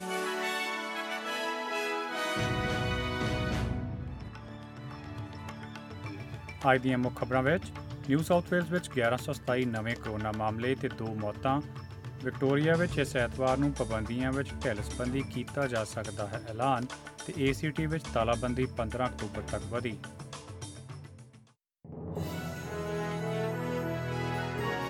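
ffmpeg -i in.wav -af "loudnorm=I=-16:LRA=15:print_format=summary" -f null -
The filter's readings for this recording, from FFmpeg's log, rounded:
Input Integrated:    -32.5 LUFS
Input True Peak:      -8.9 dBTP
Input LRA:             6.4 LU
Input Threshold:     -43.0 LUFS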